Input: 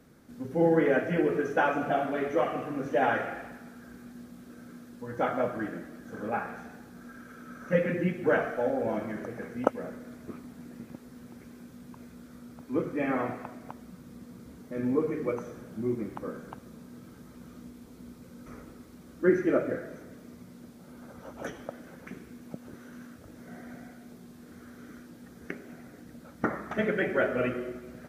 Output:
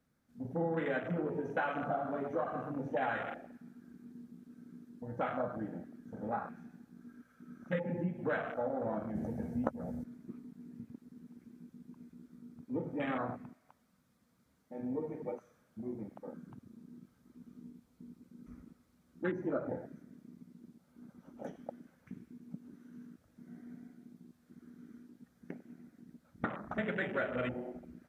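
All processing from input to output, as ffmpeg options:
-filter_complex "[0:a]asettb=1/sr,asplit=3[s0][s1][s2];[s0]atrim=end=9.154[s3];[s1]atrim=start=9.15:end=10.04,asetpts=PTS-STARTPTS,afade=t=in:d=0.004:c=qsin,afade=t=out:st=0.886:d=0.004:c=qsin,bass=f=250:g=9,treble=f=4000:g=8,asplit=2[s4][s5];[s5]adelay=13,volume=0.562[s6];[s4][s6]amix=inputs=2:normalize=0,atrim=end_sample=39249[s7];[s2]atrim=start=10.036[s8];[s3][s7]acrossfade=d=0.004:c1=hsin:c2=qsin[s9];[s9][s8]acrossfade=d=0.004:c1=qsin:c2=hsin,asettb=1/sr,asplit=3[s10][s11][s12];[s10]atrim=end=13.534[s13];[s11]atrim=start=13.53:end=16.33,asetpts=PTS-STARTPTS,afade=t=in:d=0.004:c=qsin,afade=t=out:st=2.796:d=0.004:c=qsin,lowshelf=f=410:g=-6,bandreject=f=60:t=h:w=6,bandreject=f=120:t=h:w=6,bandreject=f=180:t=h:w=6,bandreject=f=240:t=h:w=6,bandreject=f=300:t=h:w=6,bandreject=f=360:t=h:w=6,bandreject=f=420:t=h:w=6,bandreject=f=480:t=h:w=6[s14];[s12]atrim=start=16.326[s15];[s13][s14]acrossfade=d=0.004:c1=hsin:c2=qsin[s16];[s16][s15]acrossfade=d=0.004:c1=qsin:c2=hsin,afwtdn=0.0224,equalizer=f=380:t=o:w=0.91:g=-7.5,acompressor=threshold=0.0282:ratio=3,volume=0.891"

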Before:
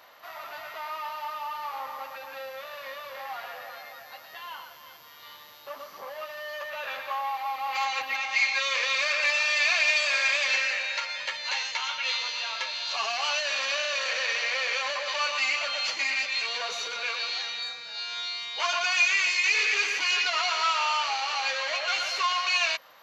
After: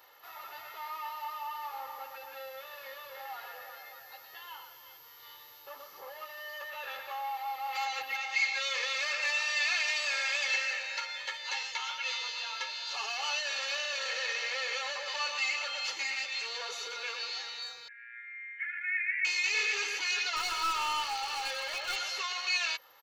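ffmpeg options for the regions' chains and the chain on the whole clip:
-filter_complex "[0:a]asettb=1/sr,asplit=3[s0][s1][s2];[s0]atrim=end=17.884[s3];[s1]atrim=start=17.88:end=19.25,asetpts=PTS-STARTPTS,afade=t=in:d=0.004:c=qsin,afade=t=out:st=1.366:d=0.004:c=qsin,acontrast=70,asuperpass=centerf=1900:order=8:qfactor=2.8[s4];[s2]atrim=start=19.246[s5];[s3][s4]acrossfade=d=0.004:c1=hsin:c2=qsin[s6];[s6][s5]acrossfade=d=0.004:c1=qsin:c2=hsin,asettb=1/sr,asplit=3[s7][s8][s9];[s7]atrim=end=20.364[s10];[s8]atrim=start=20.36:end=21.96,asetpts=PTS-STARTPTS,afade=t=in:d=0.004:c=qsin,afade=t=out:st=1.596:d=0.004:c=qsin,bandreject=f=1900:w=23,aeval=exprs='clip(val(0),-1,0.0531)':c=same[s11];[s9]atrim=start=21.956[s12];[s10][s11]acrossfade=d=0.004:c1=hsin:c2=qsin[s13];[s13][s12]acrossfade=d=0.004:c1=qsin:c2=hsin,highshelf=f=9000:g=9,bandreject=f=2300:w=24,aecho=1:1:2.3:0.62,volume=0.422"

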